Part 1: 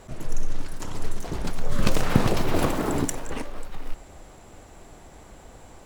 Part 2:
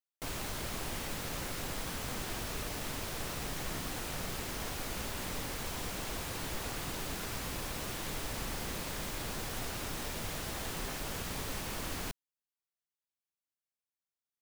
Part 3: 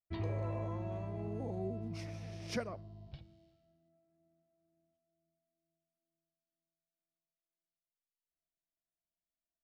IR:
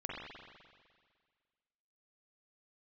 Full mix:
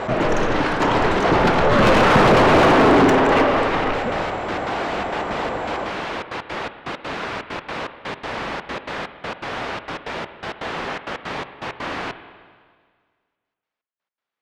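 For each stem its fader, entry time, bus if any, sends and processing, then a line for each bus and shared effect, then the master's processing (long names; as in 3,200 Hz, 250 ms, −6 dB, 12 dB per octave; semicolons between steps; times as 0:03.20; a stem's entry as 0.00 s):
−3.0 dB, 0.00 s, send −4 dB, no processing
−10.5 dB, 0.00 s, send −10 dB, gate pattern "xxx.x.xx..x.x" 164 BPM
−19.0 dB, 1.50 s, no send, spectral tilt −4.5 dB per octave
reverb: on, RT60 1.8 s, pre-delay 42 ms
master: low-pass filter 3,700 Hz 12 dB per octave; mid-hump overdrive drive 35 dB, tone 1,500 Hz, clips at −4.5 dBFS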